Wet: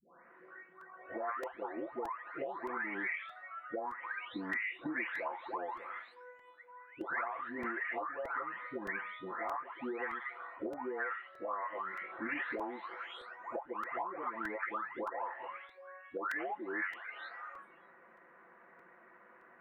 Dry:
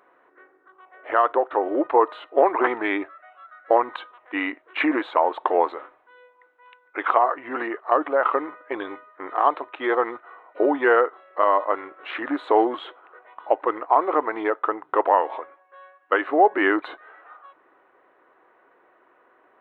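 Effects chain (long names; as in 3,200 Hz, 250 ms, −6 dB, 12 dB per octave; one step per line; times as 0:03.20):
every frequency bin delayed by itself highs late, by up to 773 ms
drawn EQ curve 110 Hz 0 dB, 200 Hz +12 dB, 290 Hz −6 dB, 420 Hz −3 dB, 1,200 Hz −2 dB, 2,000 Hz +5 dB, 3,200 Hz −10 dB
downward compressor 12 to 1, threshold −35 dBFS, peak gain reduction 19 dB
dynamic equaliser 500 Hz, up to −5 dB, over −48 dBFS, Q 0.77
regular buffer underruns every 0.62 s, samples 128, repeat, from 0:00.81
level +2 dB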